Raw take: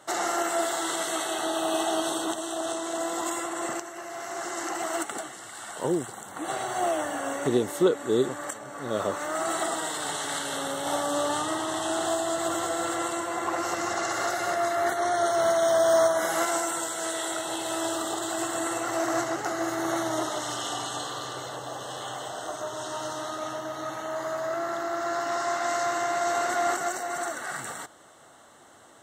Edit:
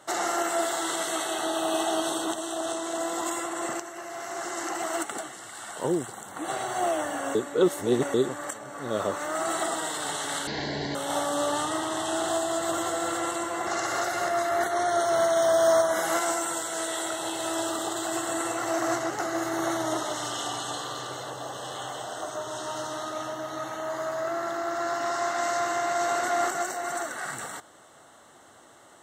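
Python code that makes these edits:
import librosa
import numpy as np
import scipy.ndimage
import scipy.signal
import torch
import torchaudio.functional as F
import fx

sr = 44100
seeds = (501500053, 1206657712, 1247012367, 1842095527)

y = fx.edit(x, sr, fx.reverse_span(start_s=7.35, length_s=0.79),
    fx.speed_span(start_s=10.47, length_s=0.25, speed=0.52),
    fx.cut(start_s=13.44, length_s=0.49), tone=tone)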